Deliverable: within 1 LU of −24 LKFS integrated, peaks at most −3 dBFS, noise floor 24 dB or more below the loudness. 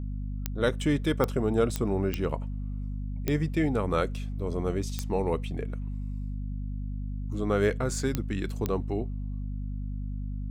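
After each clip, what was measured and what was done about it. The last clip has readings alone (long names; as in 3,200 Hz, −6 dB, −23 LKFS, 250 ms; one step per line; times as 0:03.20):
number of clicks 8; mains hum 50 Hz; hum harmonics up to 250 Hz; level of the hum −31 dBFS; integrated loudness −30.5 LKFS; sample peak −11.0 dBFS; target loudness −24.0 LKFS
→ click removal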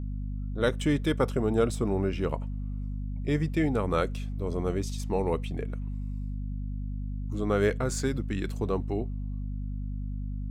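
number of clicks 0; mains hum 50 Hz; hum harmonics up to 250 Hz; level of the hum −31 dBFS
→ hum removal 50 Hz, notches 5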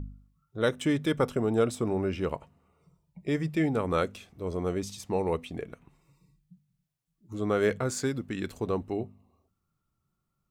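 mains hum none found; integrated loudness −30.0 LKFS; sample peak −12.0 dBFS; target loudness −24.0 LKFS
→ level +6 dB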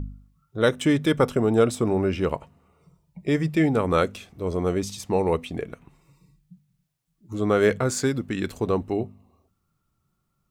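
integrated loudness −24.0 LKFS; sample peak −6.0 dBFS; background noise floor −75 dBFS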